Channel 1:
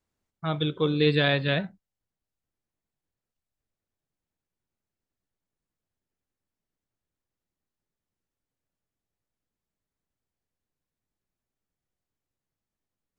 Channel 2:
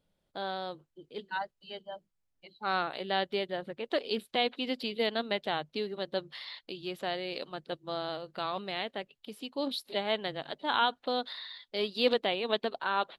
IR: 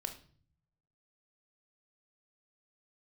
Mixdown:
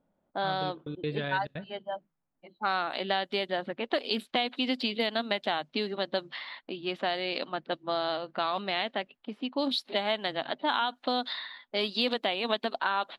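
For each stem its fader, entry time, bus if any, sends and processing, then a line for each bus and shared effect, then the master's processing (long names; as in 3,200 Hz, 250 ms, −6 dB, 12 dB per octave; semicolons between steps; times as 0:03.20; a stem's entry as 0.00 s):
−10.5 dB, 0.00 s, send −19 dB, high-shelf EQ 3,900 Hz −9.5 dB; gate pattern "x.x.xxxx" 174 BPM
−4.5 dB, 0.00 s, no send, low-pass that shuts in the quiet parts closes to 1,000 Hz, open at −27.5 dBFS; drawn EQ curve 120 Hz 0 dB, 250 Hz +14 dB, 450 Hz +6 dB, 660 Hz +13 dB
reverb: on, RT60 0.50 s, pre-delay 23 ms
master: downward compressor 5 to 1, threshold −25 dBFS, peak gain reduction 11.5 dB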